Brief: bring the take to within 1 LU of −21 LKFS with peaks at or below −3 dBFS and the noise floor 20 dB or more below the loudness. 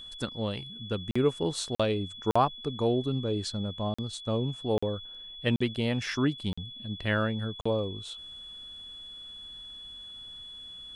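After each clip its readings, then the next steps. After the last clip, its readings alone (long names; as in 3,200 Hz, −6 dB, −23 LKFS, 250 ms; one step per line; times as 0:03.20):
number of dropouts 8; longest dropout 45 ms; interfering tone 3,400 Hz; level of the tone −42 dBFS; integrated loudness −30.5 LKFS; sample peak −12.5 dBFS; target loudness −21.0 LKFS
→ repair the gap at 0:01.11/0:01.75/0:02.31/0:03.94/0:04.78/0:05.56/0:06.53/0:07.61, 45 ms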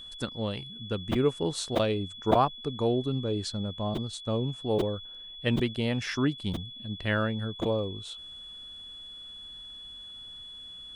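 number of dropouts 0; interfering tone 3,400 Hz; level of the tone −42 dBFS
→ notch filter 3,400 Hz, Q 30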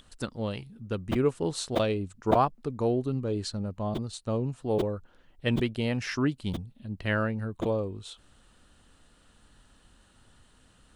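interfering tone none found; integrated loudness −30.5 LKFS; sample peak −9.0 dBFS; target loudness −21.0 LKFS
→ level +9.5 dB
brickwall limiter −3 dBFS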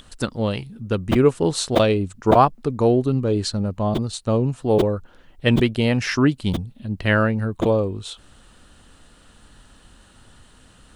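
integrated loudness −21.0 LKFS; sample peak −3.0 dBFS; background noise floor −52 dBFS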